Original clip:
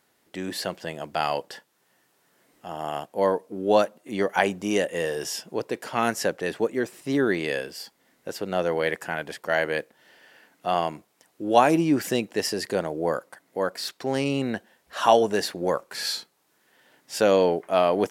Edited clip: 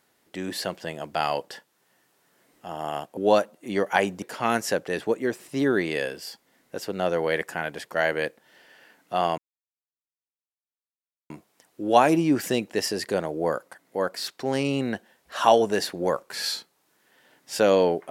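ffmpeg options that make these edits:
ffmpeg -i in.wav -filter_complex "[0:a]asplit=4[link_01][link_02][link_03][link_04];[link_01]atrim=end=3.172[link_05];[link_02]atrim=start=3.598:end=4.652[link_06];[link_03]atrim=start=5.748:end=10.91,asetpts=PTS-STARTPTS,afade=type=out:start_time=5.158:duration=0.004:curve=hsin,apad=pad_dur=1.92[link_07];[link_04]atrim=start=10.91,asetpts=PTS-STARTPTS,afade=type=in:duration=0.004:curve=hsin[link_08];[link_05][link_06]acrossfade=duration=0.004:curve1=hsin:curve2=hsin[link_09];[link_07][link_08]concat=n=2:v=0:a=1[link_10];[link_09][link_10]acrossfade=duration=0.004:curve1=hsin:curve2=hsin" out.wav

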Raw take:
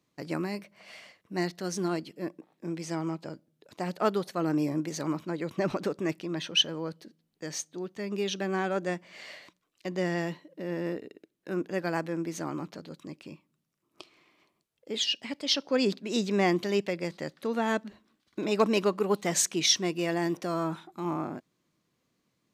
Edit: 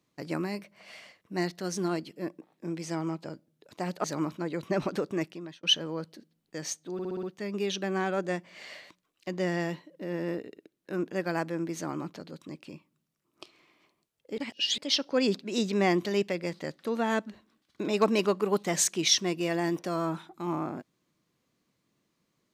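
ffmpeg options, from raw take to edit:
ffmpeg -i in.wav -filter_complex "[0:a]asplit=10[link_01][link_02][link_03][link_04][link_05][link_06][link_07][link_08][link_09][link_10];[link_01]atrim=end=4.042[link_11];[link_02]atrim=start=4.918:end=6.51,asetpts=PTS-STARTPTS,afade=type=out:start_time=1.132:duration=0.46[link_12];[link_03]atrim=start=6.51:end=7.872,asetpts=PTS-STARTPTS,afade=type=in:duration=0.004:curve=hsin[link_13];[link_04]atrim=start=7.808:end=7.872[link_14];[link_05]atrim=start=7.808:end=7.872[link_15];[link_06]atrim=start=7.808:end=7.872[link_16];[link_07]atrim=start=7.808:end=7.872[link_17];[link_08]atrim=start=7.808:end=14.962[link_18];[link_09]atrim=start=14.958:end=15.362,asetpts=PTS-STARTPTS,areverse[link_19];[link_10]atrim=start=15.358[link_20];[link_12][link_13]concat=n=2:v=0:a=1[link_21];[link_11][link_21]acrossfade=duration=0.004:curve1=hsin:curve2=hsin[link_22];[link_22][link_14]acrossfade=duration=0.004:curve1=hsin:curve2=hsin[link_23];[link_23][link_15]acrossfade=duration=0.004:curve1=hsin:curve2=hsin[link_24];[link_24][link_16]acrossfade=duration=0.004:curve1=hsin:curve2=hsin[link_25];[link_25][link_17]acrossfade=duration=0.004:curve1=hsin:curve2=hsin[link_26];[link_26][link_18]acrossfade=duration=0.004:curve1=hsin:curve2=hsin[link_27];[link_27][link_19]acrossfade=duration=0.004:curve1=hsin:curve2=hsin[link_28];[link_28][link_20]acrossfade=duration=0.004:curve1=hsin:curve2=hsin" out.wav

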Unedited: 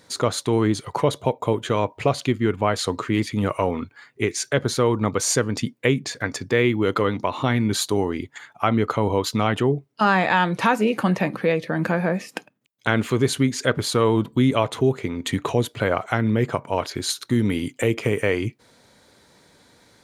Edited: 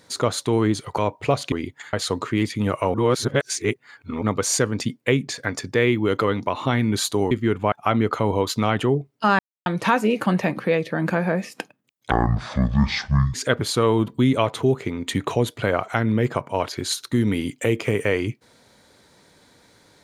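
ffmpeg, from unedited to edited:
ffmpeg -i in.wav -filter_complex "[0:a]asplit=12[link_01][link_02][link_03][link_04][link_05][link_06][link_07][link_08][link_09][link_10][link_11][link_12];[link_01]atrim=end=0.982[link_13];[link_02]atrim=start=1.748:end=2.292[link_14];[link_03]atrim=start=8.078:end=8.492[link_15];[link_04]atrim=start=2.698:end=3.712[link_16];[link_05]atrim=start=3.708:end=4.992,asetpts=PTS-STARTPTS,areverse[link_17];[link_06]atrim=start=4.988:end=8.082[link_18];[link_07]atrim=start=2.288:end=2.702[link_19];[link_08]atrim=start=8.488:end=10.16,asetpts=PTS-STARTPTS,afade=type=out:start_time=1.668:duration=0.004:curve=hsin[link_20];[link_09]atrim=start=10.16:end=10.43,asetpts=PTS-STARTPTS,volume=0[link_21];[link_10]atrim=start=10.43:end=12.884,asetpts=PTS-STARTPTS,afade=type=in:duration=0.004:curve=hsin[link_22];[link_11]atrim=start=12.88:end=13.52,asetpts=PTS-STARTPTS,asetrate=22932,aresample=44100[link_23];[link_12]atrim=start=13.516[link_24];[link_13][link_14]acrossfade=duration=0.004:curve1=hsin:curve2=hsin[link_25];[link_25][link_15]acrossfade=duration=0.004:curve1=hsin:curve2=hsin[link_26];[link_26][link_16]acrossfade=duration=0.004:curve1=hsin:curve2=hsin[link_27];[link_27][link_17]acrossfade=duration=0.004:curve1=hsin:curve2=hsin[link_28];[link_28][link_18]acrossfade=duration=0.004:curve1=hsin:curve2=hsin[link_29];[link_29][link_19]acrossfade=duration=0.004:curve1=hsin:curve2=hsin[link_30];[link_20][link_21][link_22]concat=n=3:v=0:a=1[link_31];[link_30][link_31]acrossfade=duration=0.004:curve1=hsin:curve2=hsin[link_32];[link_32][link_23]acrossfade=duration=0.004:curve1=hsin:curve2=hsin[link_33];[link_33][link_24]acrossfade=duration=0.004:curve1=hsin:curve2=hsin" out.wav

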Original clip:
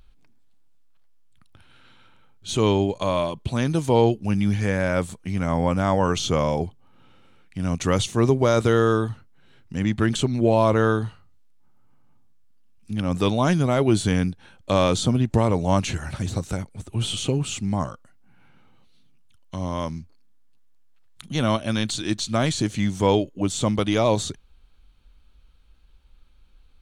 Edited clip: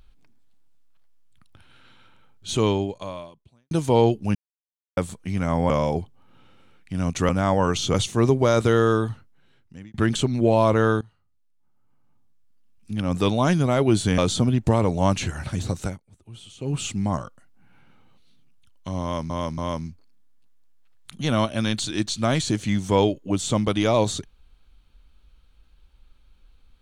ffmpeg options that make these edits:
ffmpeg -i in.wav -filter_complex "[0:a]asplit=14[link_01][link_02][link_03][link_04][link_05][link_06][link_07][link_08][link_09][link_10][link_11][link_12][link_13][link_14];[link_01]atrim=end=3.71,asetpts=PTS-STARTPTS,afade=type=out:start_time=2.58:duration=1.13:curve=qua[link_15];[link_02]atrim=start=3.71:end=4.35,asetpts=PTS-STARTPTS,afade=type=in:duration=0.004:curve=hsin,afade=type=out:start_time=0.636:duration=0.004:curve=hsin[link_16];[link_03]atrim=start=4.35:end=4.97,asetpts=PTS-STARTPTS,volume=0[link_17];[link_04]atrim=start=4.97:end=5.702,asetpts=PTS-STARTPTS,afade=type=in:duration=0.004:curve=hsin[link_18];[link_05]atrim=start=6.348:end=7.942[link_19];[link_06]atrim=start=5.698:end=6.352[link_20];[link_07]atrim=start=7.938:end=9.94,asetpts=PTS-STARTPTS,afade=type=out:start_time=1.172:duration=0.83[link_21];[link_08]atrim=start=9.94:end=11.01,asetpts=PTS-STARTPTS,afade=type=in:duration=0.004:curve=hsin,afade=type=out:start_time=1.066:duration=0.004:curve=hsin:silence=0.0841395[link_22];[link_09]atrim=start=11.01:end=14.182,asetpts=PTS-STARTPTS,afade=type=in:duration=2.13:silence=0.0841395[link_23];[link_10]atrim=start=14.848:end=16.67,asetpts=PTS-STARTPTS,afade=type=out:start_time=1.682:duration=0.14:silence=0.133352[link_24];[link_11]atrim=start=16.67:end=17.27,asetpts=PTS-STARTPTS,volume=-17.5dB[link_25];[link_12]atrim=start=17.27:end=19.972,asetpts=PTS-STARTPTS,afade=type=in:duration=0.14:silence=0.133352[link_26];[link_13]atrim=start=19.688:end=19.972[link_27];[link_14]atrim=start=19.688[link_28];[link_15][link_16][link_17][link_18]concat=n=4:v=0:a=1[link_29];[link_29][link_19]acrossfade=duration=0.004:curve1=hsin:curve2=hsin[link_30];[link_30][link_20]acrossfade=duration=0.004:curve1=hsin:curve2=hsin[link_31];[link_21][link_22][link_23]concat=n=3:v=0:a=1[link_32];[link_31][link_32]acrossfade=duration=0.004:curve1=hsin:curve2=hsin[link_33];[link_24][link_25][link_26]concat=n=3:v=0:a=1[link_34];[link_33][link_34]acrossfade=duration=0.004:curve1=hsin:curve2=hsin[link_35];[link_35][link_27]acrossfade=duration=0.004:curve1=hsin:curve2=hsin[link_36];[link_36][link_28]acrossfade=duration=0.004:curve1=hsin:curve2=hsin" out.wav

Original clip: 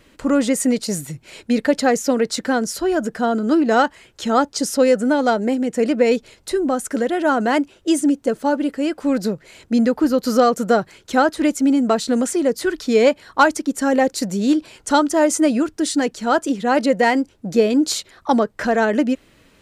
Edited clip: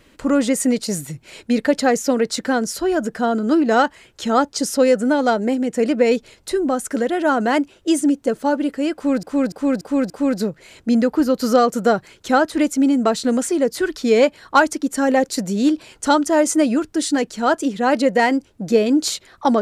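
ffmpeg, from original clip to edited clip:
ffmpeg -i in.wav -filter_complex "[0:a]asplit=5[link_01][link_02][link_03][link_04][link_05];[link_01]atrim=end=9.232[link_06];[link_02]atrim=start=8.938:end=9.232[link_07];[link_03]atrim=start=8.938:end=9.232[link_08];[link_04]atrim=start=8.938:end=9.232[link_09];[link_05]atrim=start=8.938[link_10];[link_06][link_07]acrossfade=duration=0.004:curve1=hsin:curve2=hsin[link_11];[link_11][link_08]acrossfade=duration=0.004:curve1=hsin:curve2=hsin[link_12];[link_12][link_09]acrossfade=duration=0.004:curve1=hsin:curve2=hsin[link_13];[link_13][link_10]acrossfade=duration=0.004:curve1=hsin:curve2=hsin" out.wav

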